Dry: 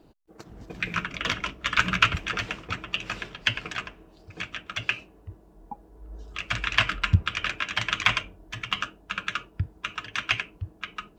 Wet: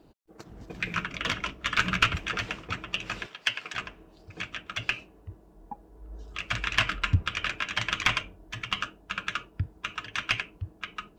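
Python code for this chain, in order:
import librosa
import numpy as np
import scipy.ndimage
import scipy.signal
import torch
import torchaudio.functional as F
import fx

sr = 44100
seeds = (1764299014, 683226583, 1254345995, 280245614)

y = fx.diode_clip(x, sr, knee_db=-12.5)
y = fx.highpass(y, sr, hz=800.0, slope=6, at=(3.26, 3.74))
y = y * librosa.db_to_amplitude(-1.0)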